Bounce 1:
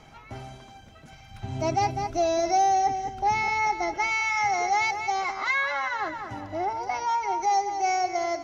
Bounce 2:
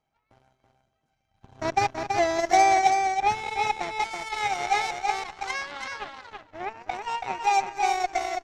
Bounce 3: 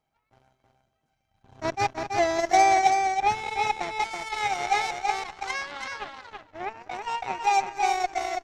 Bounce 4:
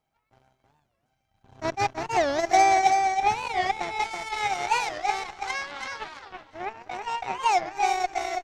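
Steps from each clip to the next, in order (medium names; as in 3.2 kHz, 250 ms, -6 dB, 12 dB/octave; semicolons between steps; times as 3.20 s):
peaking EQ 700 Hz +4.5 dB 1.2 oct; Chebyshev shaper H 3 -12 dB, 6 -34 dB, 7 -30 dB, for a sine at -10 dBFS; on a send: delay 329 ms -5 dB; on the sum: trim +1.5 dB
attacks held to a fixed rise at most 480 dB/s
feedback delay 351 ms, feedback 32%, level -16.5 dB; warped record 45 rpm, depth 250 cents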